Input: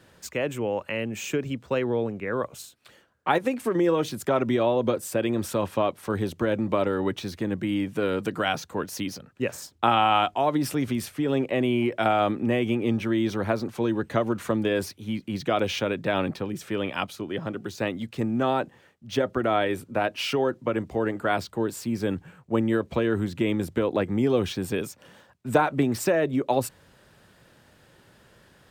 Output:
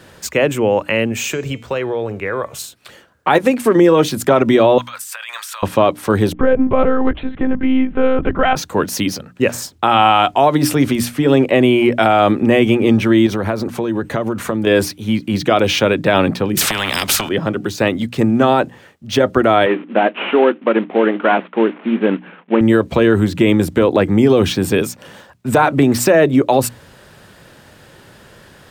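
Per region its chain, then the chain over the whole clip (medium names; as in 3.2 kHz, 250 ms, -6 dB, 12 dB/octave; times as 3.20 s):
1.12–2.59 s: peaking EQ 230 Hz -9 dB 0.96 oct + compression 3:1, threshold -30 dBFS + de-hum 221.9 Hz, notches 36
4.78–5.63 s: inverse Chebyshev high-pass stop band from 330 Hz, stop band 60 dB + compressor with a negative ratio -43 dBFS
6.33–8.56 s: low-pass 1.9 kHz + monotone LPC vocoder at 8 kHz 260 Hz
13.26–14.67 s: peaking EQ 4.1 kHz -3 dB 1.7 oct + compression 4:1, threshold -28 dBFS
16.57–17.29 s: resonant low shelf 340 Hz +12.5 dB, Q 3 + compression, threshold -18 dBFS + spectrum-flattening compressor 10:1
19.66–22.61 s: CVSD coder 16 kbps + brick-wall FIR high-pass 180 Hz
whole clip: hum notches 60/120/180/240/300 Hz; loudness maximiser +14 dB; trim -1 dB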